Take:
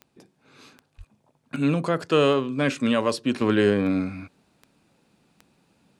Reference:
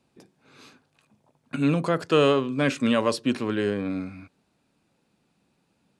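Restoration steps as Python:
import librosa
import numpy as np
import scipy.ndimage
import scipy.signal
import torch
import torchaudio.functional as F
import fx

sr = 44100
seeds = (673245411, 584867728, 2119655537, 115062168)

y = fx.fix_declick_ar(x, sr, threshold=10.0)
y = fx.fix_deplosive(y, sr, at_s=(0.97,))
y = fx.gain(y, sr, db=fx.steps((0.0, 0.0), (3.41, -6.0)))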